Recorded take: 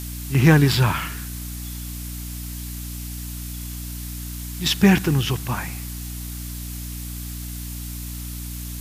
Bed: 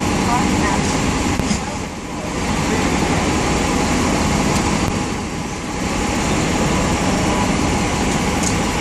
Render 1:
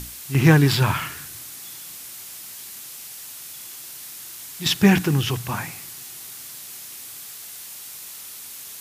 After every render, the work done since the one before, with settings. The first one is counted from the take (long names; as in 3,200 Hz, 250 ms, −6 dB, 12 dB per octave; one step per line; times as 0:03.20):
mains-hum notches 60/120/180/240/300 Hz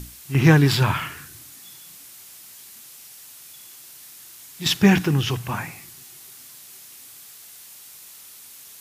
noise reduction from a noise print 6 dB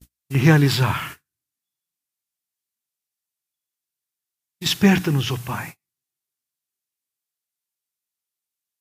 noise gate −34 dBFS, range −43 dB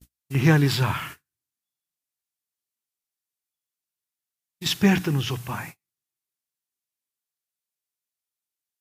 level −3.5 dB